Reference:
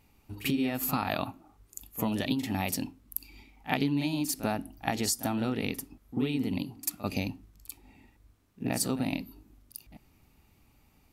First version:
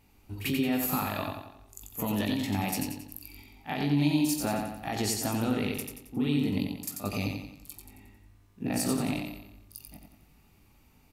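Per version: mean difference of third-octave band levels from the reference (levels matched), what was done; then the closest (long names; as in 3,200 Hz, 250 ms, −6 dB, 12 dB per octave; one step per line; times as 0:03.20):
5.5 dB: brickwall limiter −21 dBFS, peak gain reduction 11 dB
double-tracking delay 20 ms −7 dB
repeating echo 90 ms, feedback 46%, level −4.5 dB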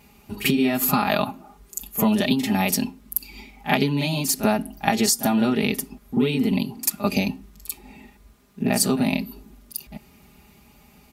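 2.5 dB: high-pass filter 57 Hz
comb filter 4.9 ms, depth 75%
in parallel at −1 dB: downward compressor, threshold −36 dBFS, peak gain reduction 13.5 dB
on the sum: level +5.5 dB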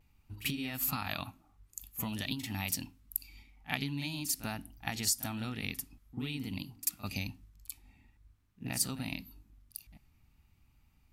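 3.5 dB: parametric band 450 Hz −15 dB 2.3 octaves
pitch vibrato 0.49 Hz 27 cents
one half of a high-frequency compander decoder only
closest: second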